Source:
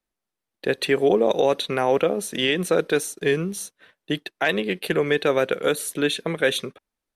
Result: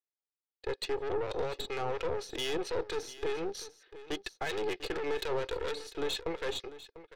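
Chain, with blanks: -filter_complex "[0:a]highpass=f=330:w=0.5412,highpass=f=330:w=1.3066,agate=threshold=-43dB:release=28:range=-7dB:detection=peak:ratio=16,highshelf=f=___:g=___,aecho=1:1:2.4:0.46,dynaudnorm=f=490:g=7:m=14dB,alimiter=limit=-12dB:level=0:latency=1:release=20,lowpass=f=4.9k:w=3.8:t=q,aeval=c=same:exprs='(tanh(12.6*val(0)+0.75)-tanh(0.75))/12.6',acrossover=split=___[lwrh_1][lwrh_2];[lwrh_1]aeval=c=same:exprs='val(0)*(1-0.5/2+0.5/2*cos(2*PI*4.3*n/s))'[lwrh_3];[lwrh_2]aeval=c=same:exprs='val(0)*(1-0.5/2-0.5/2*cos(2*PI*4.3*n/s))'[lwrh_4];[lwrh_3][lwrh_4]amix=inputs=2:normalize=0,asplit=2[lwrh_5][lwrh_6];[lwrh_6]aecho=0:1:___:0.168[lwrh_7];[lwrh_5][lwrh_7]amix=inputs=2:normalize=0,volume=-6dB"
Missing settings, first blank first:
3.2k, -12, 1400, 696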